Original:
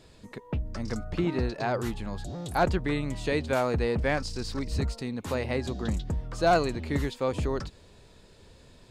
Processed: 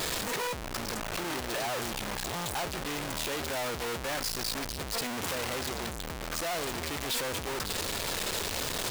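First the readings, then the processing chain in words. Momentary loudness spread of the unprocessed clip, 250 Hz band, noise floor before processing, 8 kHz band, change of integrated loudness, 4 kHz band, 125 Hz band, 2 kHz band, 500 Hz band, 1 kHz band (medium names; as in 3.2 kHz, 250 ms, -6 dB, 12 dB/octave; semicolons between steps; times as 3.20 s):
9 LU, -8.0 dB, -55 dBFS, +12.0 dB, -3.0 dB, +7.5 dB, -10.0 dB, +0.5 dB, -6.5 dB, -3.5 dB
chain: one-bit comparator; bass shelf 350 Hz -11.5 dB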